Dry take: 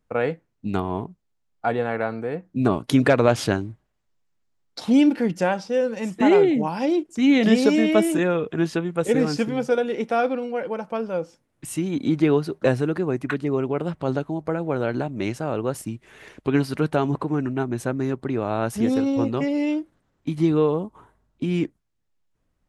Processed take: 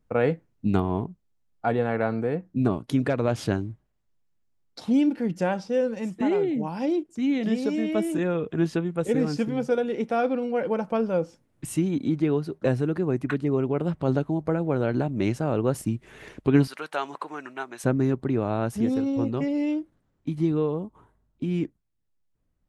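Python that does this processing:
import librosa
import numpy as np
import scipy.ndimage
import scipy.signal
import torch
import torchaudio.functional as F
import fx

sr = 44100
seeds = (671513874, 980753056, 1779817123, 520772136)

y = fx.highpass(x, sr, hz=1000.0, slope=12, at=(16.67, 17.84))
y = fx.low_shelf(y, sr, hz=400.0, db=7.0)
y = fx.rider(y, sr, range_db=10, speed_s=0.5)
y = F.gain(torch.from_numpy(y), -7.0).numpy()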